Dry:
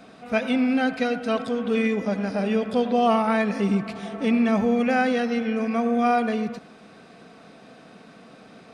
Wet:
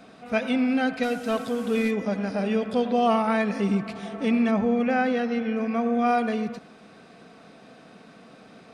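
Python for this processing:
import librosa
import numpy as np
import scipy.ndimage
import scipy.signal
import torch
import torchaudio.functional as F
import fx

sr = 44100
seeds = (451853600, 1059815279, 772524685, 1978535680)

y = fx.delta_mod(x, sr, bps=64000, step_db=-38.5, at=(1.03, 1.91))
y = fx.lowpass(y, sr, hz=fx.line((4.5, 2400.0), (6.07, 4200.0)), slope=6, at=(4.5, 6.07), fade=0.02)
y = F.gain(torch.from_numpy(y), -1.5).numpy()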